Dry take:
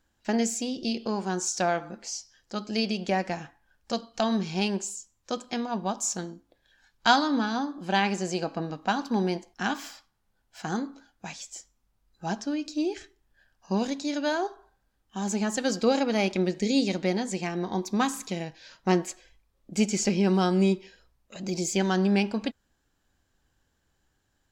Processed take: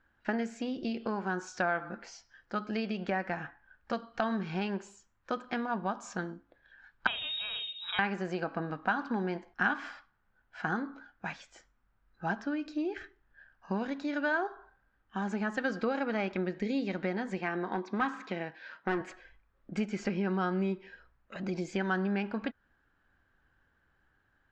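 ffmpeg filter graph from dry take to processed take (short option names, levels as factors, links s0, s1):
-filter_complex "[0:a]asettb=1/sr,asplit=3[s0][s1][s2];[s0]atrim=end=7.074[s3];[s1]atrim=start=7.07:end=7.99,asetpts=PTS-STARTPTS,afade=t=in:d=0.004:c=qsin,afade=t=out:st=0.916:d=0.004:c=qsin,lowshelf=f=230:g=10,acompressor=threshold=0.0398:ratio=3:attack=3.2:release=140:knee=1:detection=peak,lowpass=f=3400:t=q:w=0.5098,lowpass=f=3400:t=q:w=0.6013,lowpass=f=3400:t=q:w=0.9,lowpass=f=3400:t=q:w=2.563,afreqshift=-4000[s4];[s2]atrim=start=7.986[s5];[s3][s4]acrossfade=d=0.004:c1=hsin:c2=qsin[s6];[s6][s5]acrossfade=d=0.004:c1=qsin:c2=hsin,asettb=1/sr,asplit=3[s7][s8][s9];[s7]atrim=end=17.394[s10];[s8]atrim=start=17.39:end=19.01,asetpts=PTS-STARTPTS,afade=t=in:d=0.004:c=qsin,afade=t=out:st=1.616:d=0.004:c=qsin,highpass=210,lowpass=5600,asoftclip=type=hard:threshold=0.0841[s11];[s9]atrim=start=19.006[s12];[s10][s11]acrossfade=d=0.004:c1=hsin:c2=qsin[s13];[s13][s12]acrossfade=d=0.004:c1=qsin:c2=hsin,lowpass=2500,acompressor=threshold=0.0282:ratio=2.5,equalizer=f=1500:t=o:w=0.84:g=10.5,volume=0.891"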